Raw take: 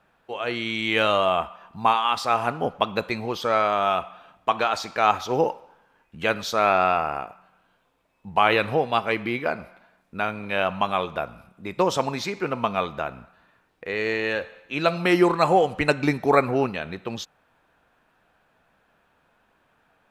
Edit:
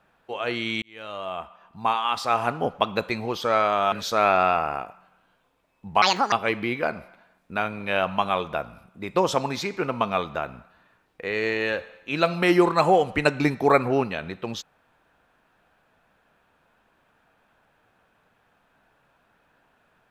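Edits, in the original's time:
0.82–2.46 s: fade in
3.92–6.33 s: delete
8.43–8.95 s: speed 173%

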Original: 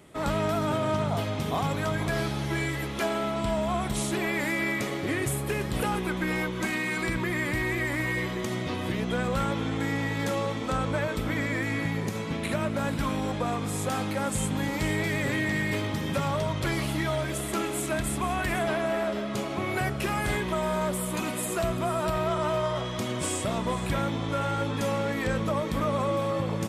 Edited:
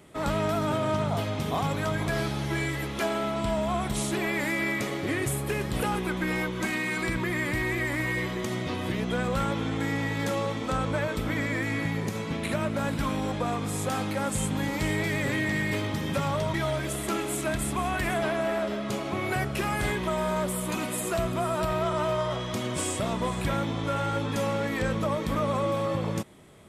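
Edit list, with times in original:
16.54–16.99 s: delete

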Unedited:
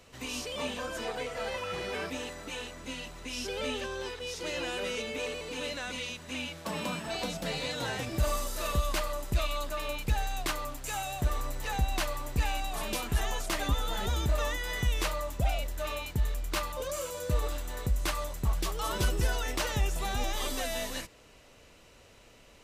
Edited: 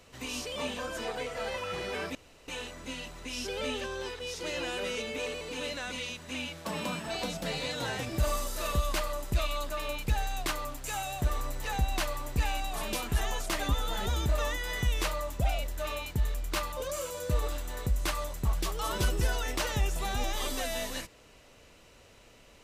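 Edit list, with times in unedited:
2.15–2.48 s: room tone

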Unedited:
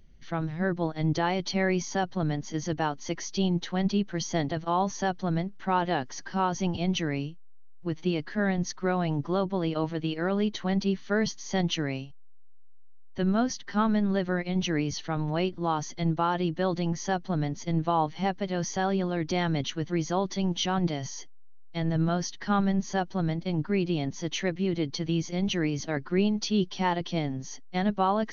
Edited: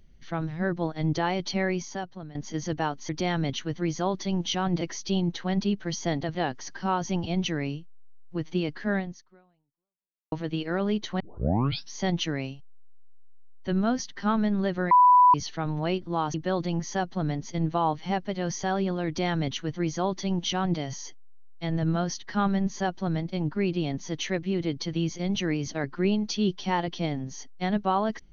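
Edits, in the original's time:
1.55–2.35 s: fade out, to -19 dB
4.63–5.86 s: delete
8.47–9.83 s: fade out exponential
10.71 s: tape start 0.73 s
14.42–14.85 s: bleep 992 Hz -13 dBFS
15.85–16.47 s: delete
19.20–20.92 s: copy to 3.09 s

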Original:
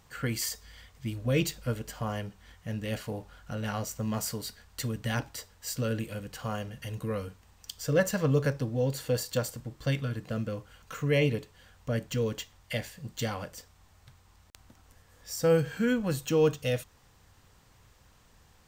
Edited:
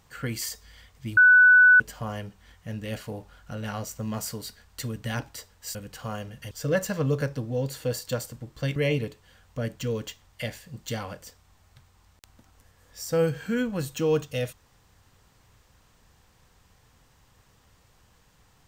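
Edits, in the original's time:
1.17–1.80 s: bleep 1.49 kHz -11.5 dBFS
5.75–6.15 s: delete
6.91–7.75 s: delete
10.00–11.07 s: delete

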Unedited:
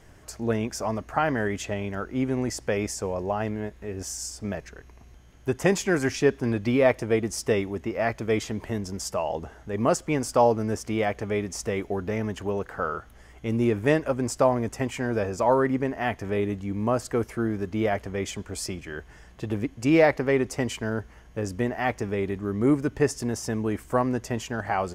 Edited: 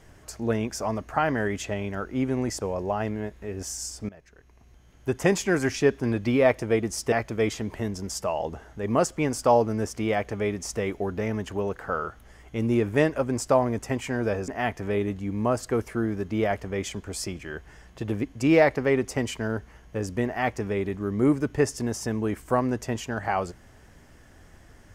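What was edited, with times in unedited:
2.61–3.01 s: delete
4.49–5.56 s: fade in, from -20.5 dB
7.52–8.02 s: delete
15.38–15.90 s: delete

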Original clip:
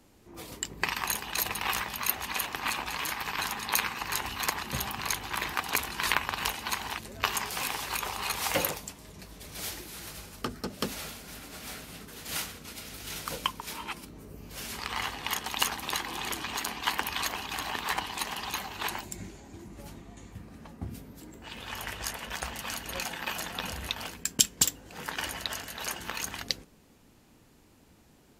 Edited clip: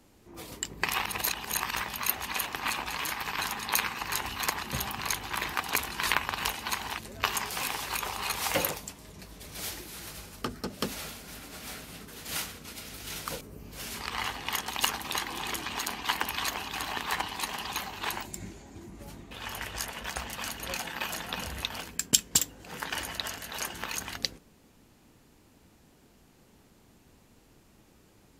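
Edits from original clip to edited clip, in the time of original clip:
0.91–1.76 s: reverse
13.41–14.19 s: delete
20.09–21.57 s: delete

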